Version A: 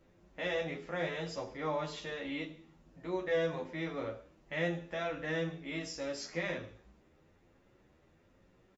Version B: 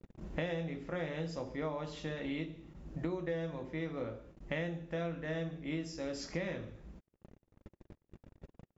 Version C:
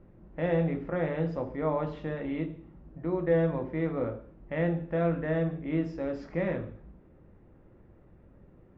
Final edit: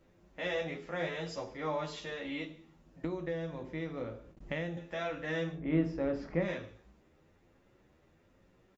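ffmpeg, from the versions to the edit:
ffmpeg -i take0.wav -i take1.wav -i take2.wav -filter_complex "[0:a]asplit=3[link_01][link_02][link_03];[link_01]atrim=end=3.042[link_04];[1:a]atrim=start=3.038:end=4.772[link_05];[link_02]atrim=start=4.768:end=5.66[link_06];[2:a]atrim=start=5.5:end=6.53[link_07];[link_03]atrim=start=6.37[link_08];[link_04][link_05]acrossfade=duration=0.004:curve1=hsin:curve2=hsin[link_09];[link_09][link_06]acrossfade=duration=0.004:curve1=hsin:curve2=hsin[link_10];[link_10][link_07]acrossfade=duration=0.16:curve1=tri:curve2=tri[link_11];[link_11][link_08]acrossfade=duration=0.16:curve1=tri:curve2=tri" out.wav

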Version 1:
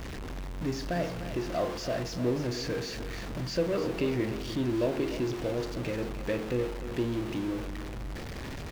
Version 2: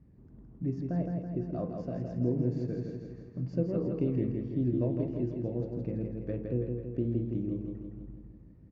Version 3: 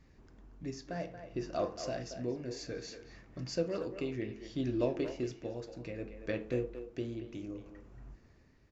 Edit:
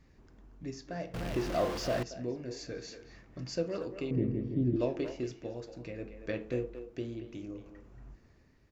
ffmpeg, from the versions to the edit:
ffmpeg -i take0.wav -i take1.wav -i take2.wav -filter_complex "[2:a]asplit=3[link_01][link_02][link_03];[link_01]atrim=end=1.142[link_04];[0:a]atrim=start=1.138:end=2.032[link_05];[link_02]atrim=start=2.028:end=4.112[link_06];[1:a]atrim=start=4.108:end=4.762[link_07];[link_03]atrim=start=4.758[link_08];[link_04][link_05]acrossfade=duration=0.004:curve1=hsin:curve2=hsin[link_09];[link_09][link_06]acrossfade=duration=0.004:curve1=hsin:curve2=hsin[link_10];[link_10][link_07]acrossfade=duration=0.004:curve1=hsin:curve2=hsin[link_11];[link_11][link_08]acrossfade=duration=0.004:curve1=hsin:curve2=hsin" out.wav

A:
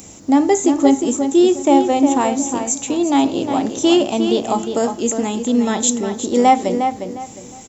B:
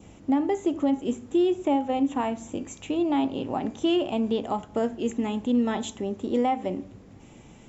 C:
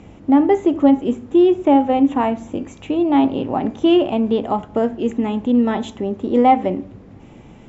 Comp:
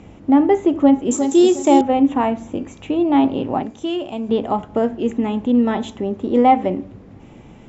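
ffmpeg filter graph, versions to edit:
ffmpeg -i take0.wav -i take1.wav -i take2.wav -filter_complex "[2:a]asplit=3[link_01][link_02][link_03];[link_01]atrim=end=1.112[link_04];[0:a]atrim=start=1.108:end=1.812[link_05];[link_02]atrim=start=1.808:end=3.632[link_06];[1:a]atrim=start=3.628:end=4.292[link_07];[link_03]atrim=start=4.288[link_08];[link_04][link_05]acrossfade=duration=0.004:curve1=hsin:curve2=hsin[link_09];[link_09][link_06]acrossfade=duration=0.004:curve1=hsin:curve2=hsin[link_10];[link_10][link_07]acrossfade=duration=0.004:curve1=hsin:curve2=hsin[link_11];[link_11][link_08]acrossfade=duration=0.004:curve1=hsin:curve2=hsin" out.wav

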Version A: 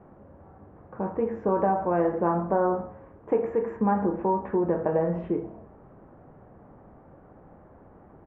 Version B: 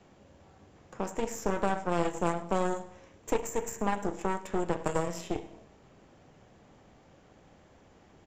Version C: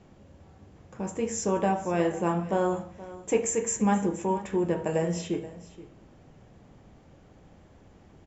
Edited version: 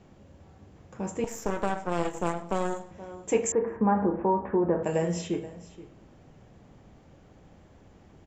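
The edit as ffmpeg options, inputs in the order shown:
ffmpeg -i take0.wav -i take1.wav -i take2.wav -filter_complex "[2:a]asplit=3[link_01][link_02][link_03];[link_01]atrim=end=1.242[link_04];[1:a]atrim=start=1.238:end=2.912[link_05];[link_02]atrim=start=2.908:end=3.522[link_06];[0:a]atrim=start=3.518:end=4.832[link_07];[link_03]atrim=start=4.828[link_08];[link_04][link_05]acrossfade=duration=0.004:curve1=hsin:curve2=hsin[link_09];[link_09][link_06]acrossfade=duration=0.004:curve1=hsin:curve2=hsin[link_10];[link_10][link_07]acrossfade=duration=0.004:curve1=hsin:curve2=hsin[link_11];[link_11][link_08]acrossfade=duration=0.004:curve1=hsin:curve2=hsin" out.wav

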